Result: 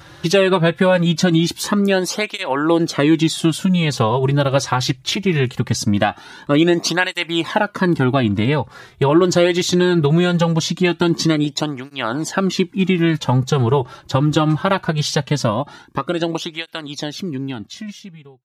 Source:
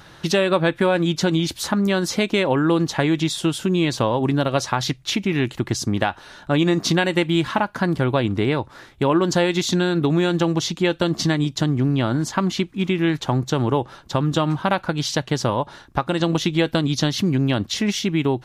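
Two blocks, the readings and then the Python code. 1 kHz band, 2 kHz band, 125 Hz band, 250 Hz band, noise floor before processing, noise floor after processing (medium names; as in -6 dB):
+2.5 dB, +3.0 dB, +3.5 dB, +2.5 dB, -47 dBFS, -46 dBFS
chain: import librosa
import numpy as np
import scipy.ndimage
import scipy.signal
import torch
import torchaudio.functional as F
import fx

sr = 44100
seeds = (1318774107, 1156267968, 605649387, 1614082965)

y = fx.fade_out_tail(x, sr, length_s=3.32)
y = fx.flanger_cancel(y, sr, hz=0.21, depth_ms=4.8)
y = y * librosa.db_to_amplitude(6.5)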